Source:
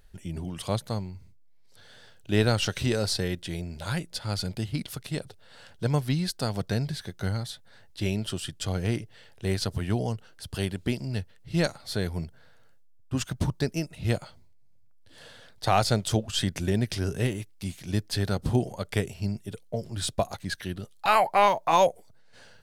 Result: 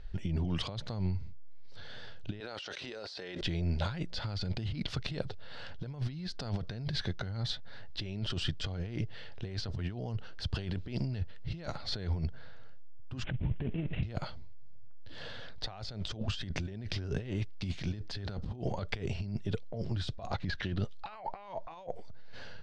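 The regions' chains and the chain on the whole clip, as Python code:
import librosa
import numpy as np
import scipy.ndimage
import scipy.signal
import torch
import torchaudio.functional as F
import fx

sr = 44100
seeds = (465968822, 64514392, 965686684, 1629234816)

y = fx.chain(x, sr, fx.highpass(hz=430.0, slope=12),
    fx.env_flatten(amount_pct=100), at=(2.4, 3.41))
y = fx.chain(y, sr, fx.cvsd(bps=16000),
    fx.peak_eq(hz=1200.0, db=-13.0, octaves=1.2),
    fx.over_compress(threshold_db=-32.0, ratio=-0.5), at=(13.24, 14.03))
y = fx.chain(y, sr, fx.median_filter(points=5),
    fx.resample_linear(factor=2), at=(20.3, 20.76))
y = fx.over_compress(y, sr, threshold_db=-36.0, ratio=-1.0)
y = scipy.signal.sosfilt(scipy.signal.butter(4, 5000.0, 'lowpass', fs=sr, output='sos'), y)
y = fx.low_shelf(y, sr, hz=73.0, db=11.0)
y = F.gain(torch.from_numpy(y), -3.0).numpy()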